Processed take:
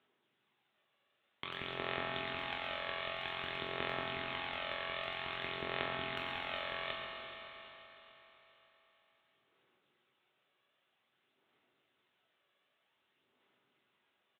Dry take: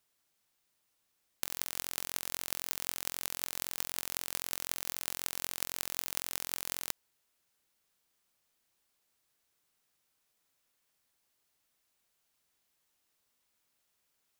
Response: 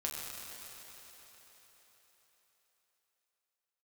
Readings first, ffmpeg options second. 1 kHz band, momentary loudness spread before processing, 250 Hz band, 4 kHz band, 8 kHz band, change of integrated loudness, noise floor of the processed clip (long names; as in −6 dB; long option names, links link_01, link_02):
+7.0 dB, 1 LU, +4.5 dB, 0.0 dB, below −35 dB, −3.5 dB, −80 dBFS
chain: -filter_complex "[0:a]highpass=frequency=130:width=0.5412,highpass=frequency=130:width=1.3066,equalizer=frequency=370:width_type=o:width=0.24:gain=10,aresample=8000,asoftclip=type=hard:threshold=-26.5dB,aresample=44100,aphaser=in_gain=1:out_gain=1:delay=1.8:decay=0.59:speed=0.52:type=sinusoidal[link_01];[1:a]atrim=start_sample=2205,asetrate=48510,aresample=44100[link_02];[link_01][link_02]afir=irnorm=-1:irlink=0,volume=2.5dB"